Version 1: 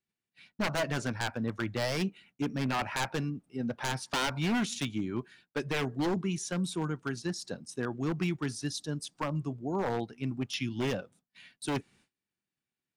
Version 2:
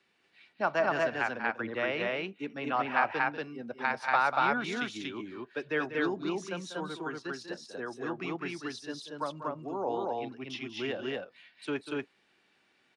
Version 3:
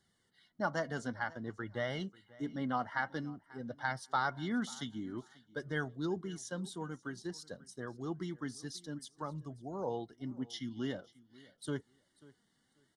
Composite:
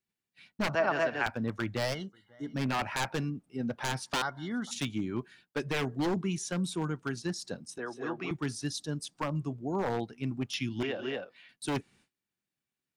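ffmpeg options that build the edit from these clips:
-filter_complex "[1:a]asplit=3[a][b][c];[2:a]asplit=2[d][e];[0:a]asplit=6[f][g][h][i][j][k];[f]atrim=end=0.752[l];[a]atrim=start=0.748:end=1.262[m];[g]atrim=start=1.258:end=1.95[n];[d]atrim=start=1.93:end=2.55[o];[h]atrim=start=2.53:end=4.222[p];[e]atrim=start=4.218:end=4.712[q];[i]atrim=start=4.708:end=7.782[r];[b]atrim=start=7.778:end=8.312[s];[j]atrim=start=8.308:end=10.832[t];[c]atrim=start=10.828:end=11.492[u];[k]atrim=start=11.488[v];[l][m]acrossfade=d=0.004:c1=hsin:c2=hsin[w];[w][n]acrossfade=d=0.004:c1=hsin:c2=hsin[x];[x][o]acrossfade=d=0.02:c1=tri:c2=tri[y];[y][p]acrossfade=d=0.02:c1=tri:c2=tri[z];[z][q]acrossfade=d=0.004:c1=hsin:c2=hsin[aa];[aa][r]acrossfade=d=0.004:c1=hsin:c2=hsin[ab];[ab][s]acrossfade=d=0.004:c1=hsin:c2=hsin[ac];[ac][t]acrossfade=d=0.004:c1=hsin:c2=hsin[ad];[ad][u]acrossfade=d=0.004:c1=hsin:c2=hsin[ae];[ae][v]acrossfade=d=0.004:c1=hsin:c2=hsin"

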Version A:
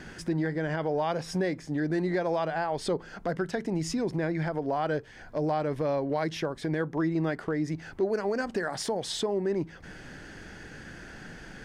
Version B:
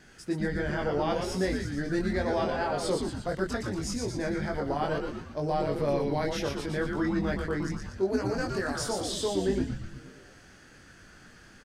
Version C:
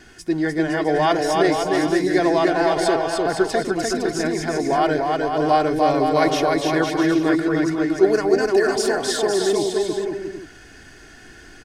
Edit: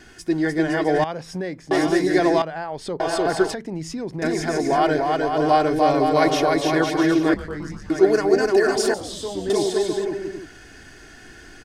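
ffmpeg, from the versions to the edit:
-filter_complex "[0:a]asplit=3[a][b][c];[1:a]asplit=2[d][e];[2:a]asplit=6[f][g][h][i][j][k];[f]atrim=end=1.042[l];[a]atrim=start=1.038:end=1.712[m];[g]atrim=start=1.708:end=2.422[n];[b]atrim=start=2.418:end=3.002[o];[h]atrim=start=2.998:end=3.542[p];[c]atrim=start=3.538:end=4.222[q];[i]atrim=start=4.218:end=7.342[r];[d]atrim=start=7.338:end=7.902[s];[j]atrim=start=7.898:end=8.942[t];[e]atrim=start=8.938:end=9.502[u];[k]atrim=start=9.498[v];[l][m]acrossfade=d=0.004:c1=hsin:c2=hsin[w];[w][n]acrossfade=d=0.004:c1=hsin:c2=hsin[x];[x][o]acrossfade=d=0.004:c1=hsin:c2=hsin[y];[y][p]acrossfade=d=0.004:c1=hsin:c2=hsin[z];[z][q]acrossfade=d=0.004:c1=hsin:c2=hsin[aa];[aa][r]acrossfade=d=0.004:c1=hsin:c2=hsin[ab];[ab][s]acrossfade=d=0.004:c1=hsin:c2=hsin[ac];[ac][t]acrossfade=d=0.004:c1=hsin:c2=hsin[ad];[ad][u]acrossfade=d=0.004:c1=hsin:c2=hsin[ae];[ae][v]acrossfade=d=0.004:c1=hsin:c2=hsin"

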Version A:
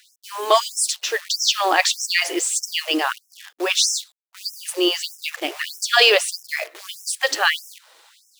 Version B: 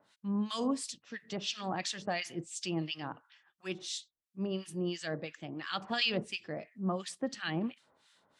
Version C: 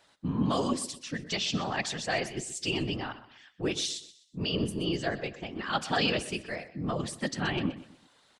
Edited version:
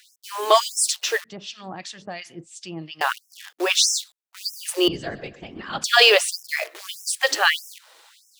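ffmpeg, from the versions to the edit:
-filter_complex "[0:a]asplit=3[a][b][c];[a]atrim=end=1.242[d];[1:a]atrim=start=1.238:end=3.012[e];[b]atrim=start=3.008:end=4.882[f];[2:a]atrim=start=4.878:end=5.842[g];[c]atrim=start=5.838[h];[d][e]acrossfade=d=0.004:c1=hsin:c2=hsin[i];[i][f]acrossfade=d=0.004:c1=hsin:c2=hsin[j];[j][g]acrossfade=d=0.004:c1=hsin:c2=hsin[k];[k][h]acrossfade=d=0.004:c1=hsin:c2=hsin"

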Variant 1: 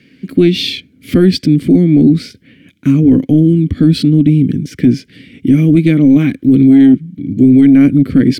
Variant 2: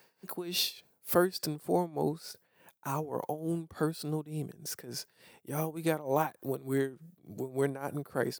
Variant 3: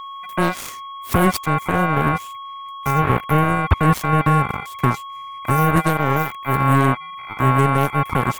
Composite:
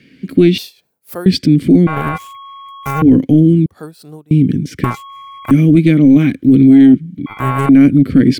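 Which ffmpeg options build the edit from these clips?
-filter_complex "[1:a]asplit=2[a][b];[2:a]asplit=3[c][d][e];[0:a]asplit=6[f][g][h][i][j][k];[f]atrim=end=0.582[l];[a]atrim=start=0.578:end=1.262[m];[g]atrim=start=1.258:end=1.872[n];[c]atrim=start=1.868:end=3.022[o];[h]atrim=start=3.018:end=3.662[p];[b]atrim=start=3.658:end=4.312[q];[i]atrim=start=4.308:end=4.842[r];[d]atrim=start=4.838:end=5.512[s];[j]atrim=start=5.508:end=7.262[t];[e]atrim=start=7.258:end=7.692[u];[k]atrim=start=7.688[v];[l][m]acrossfade=d=0.004:c1=hsin:c2=hsin[w];[w][n]acrossfade=d=0.004:c1=hsin:c2=hsin[x];[x][o]acrossfade=d=0.004:c1=hsin:c2=hsin[y];[y][p]acrossfade=d=0.004:c1=hsin:c2=hsin[z];[z][q]acrossfade=d=0.004:c1=hsin:c2=hsin[aa];[aa][r]acrossfade=d=0.004:c1=hsin:c2=hsin[ab];[ab][s]acrossfade=d=0.004:c1=hsin:c2=hsin[ac];[ac][t]acrossfade=d=0.004:c1=hsin:c2=hsin[ad];[ad][u]acrossfade=d=0.004:c1=hsin:c2=hsin[ae];[ae][v]acrossfade=d=0.004:c1=hsin:c2=hsin"

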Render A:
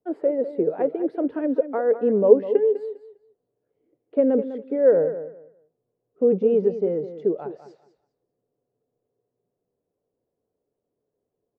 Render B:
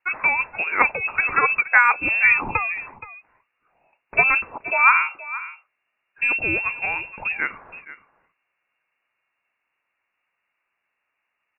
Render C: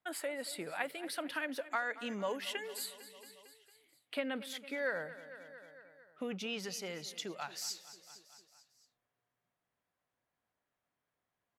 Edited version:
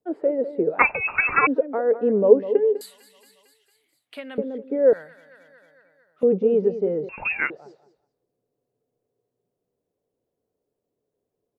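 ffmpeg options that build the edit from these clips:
-filter_complex "[1:a]asplit=2[a][b];[2:a]asplit=2[c][d];[0:a]asplit=5[e][f][g][h][i];[e]atrim=end=0.792[j];[a]atrim=start=0.788:end=1.472[k];[f]atrim=start=1.468:end=2.812[l];[c]atrim=start=2.808:end=4.382[m];[g]atrim=start=4.378:end=4.932[n];[d]atrim=start=4.928:end=6.232[o];[h]atrim=start=6.228:end=7.092[p];[b]atrim=start=7.088:end=7.502[q];[i]atrim=start=7.498[r];[j][k]acrossfade=d=0.004:c1=hsin:c2=hsin[s];[s][l]acrossfade=d=0.004:c1=hsin:c2=hsin[t];[t][m]acrossfade=d=0.004:c1=hsin:c2=hsin[u];[u][n]acrossfade=d=0.004:c1=hsin:c2=hsin[v];[v][o]acrossfade=d=0.004:c1=hsin:c2=hsin[w];[w][p]acrossfade=d=0.004:c1=hsin:c2=hsin[x];[x][q]acrossfade=d=0.004:c1=hsin:c2=hsin[y];[y][r]acrossfade=d=0.004:c1=hsin:c2=hsin"

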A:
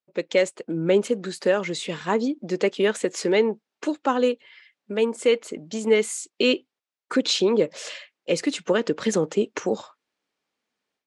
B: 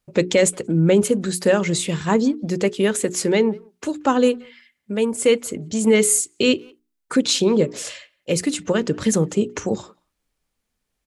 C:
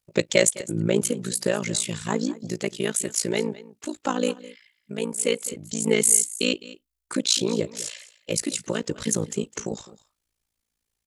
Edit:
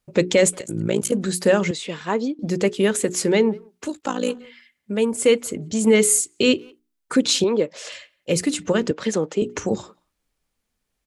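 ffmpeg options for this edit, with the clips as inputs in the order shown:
-filter_complex "[2:a]asplit=2[a][b];[0:a]asplit=3[c][d][e];[1:a]asplit=6[f][g][h][i][j][k];[f]atrim=end=0.592[l];[a]atrim=start=0.588:end=1.122[m];[g]atrim=start=1.118:end=1.712[n];[c]atrim=start=1.708:end=2.392[o];[h]atrim=start=2.388:end=4.01[p];[b]atrim=start=3.77:end=4.48[q];[i]atrim=start=4.24:end=7.442[r];[d]atrim=start=7.438:end=7.922[s];[j]atrim=start=7.918:end=8.912[t];[e]atrim=start=8.908:end=9.422[u];[k]atrim=start=9.418[v];[l][m]acrossfade=d=0.004:c1=hsin:c2=hsin[w];[w][n]acrossfade=d=0.004:c1=hsin:c2=hsin[x];[x][o]acrossfade=d=0.004:c1=hsin:c2=hsin[y];[y][p]acrossfade=d=0.004:c1=hsin:c2=hsin[z];[z][q]acrossfade=d=0.24:c1=tri:c2=tri[aa];[aa][r]acrossfade=d=0.24:c1=tri:c2=tri[ab];[ab][s]acrossfade=d=0.004:c1=hsin:c2=hsin[ac];[ac][t]acrossfade=d=0.004:c1=hsin:c2=hsin[ad];[ad][u]acrossfade=d=0.004:c1=hsin:c2=hsin[ae];[ae][v]acrossfade=d=0.004:c1=hsin:c2=hsin"

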